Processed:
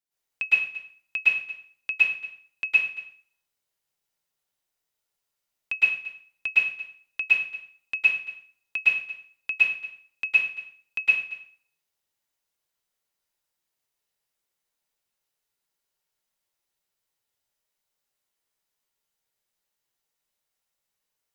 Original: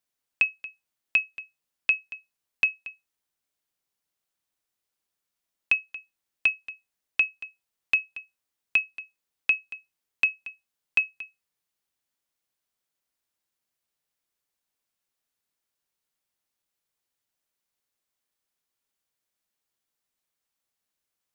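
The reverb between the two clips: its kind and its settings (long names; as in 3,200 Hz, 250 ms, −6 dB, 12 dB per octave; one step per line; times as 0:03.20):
dense smooth reverb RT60 0.5 s, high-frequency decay 0.9×, pre-delay 100 ms, DRR −9.5 dB
level −8 dB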